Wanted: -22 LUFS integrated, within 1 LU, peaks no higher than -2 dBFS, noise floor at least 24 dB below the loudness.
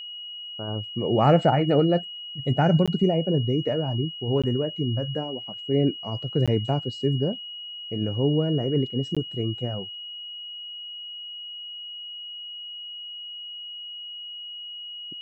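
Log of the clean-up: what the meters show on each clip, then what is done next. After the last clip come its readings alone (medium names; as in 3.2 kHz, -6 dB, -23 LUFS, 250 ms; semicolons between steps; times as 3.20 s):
dropouts 4; longest dropout 16 ms; steady tone 2.9 kHz; tone level -35 dBFS; loudness -26.5 LUFS; peak level -7.5 dBFS; loudness target -22.0 LUFS
-> interpolate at 2.86/4.42/6.46/9.15 s, 16 ms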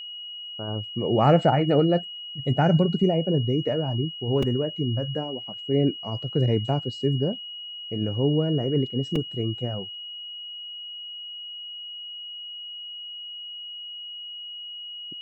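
dropouts 0; steady tone 2.9 kHz; tone level -35 dBFS
-> band-stop 2.9 kHz, Q 30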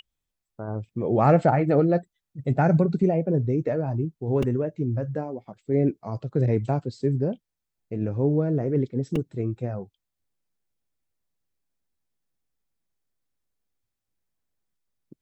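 steady tone not found; loudness -25.0 LUFS; peak level -7.5 dBFS; loudness target -22.0 LUFS
-> trim +3 dB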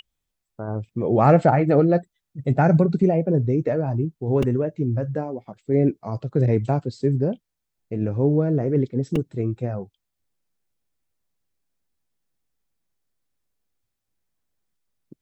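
loudness -22.0 LUFS; peak level -4.5 dBFS; noise floor -80 dBFS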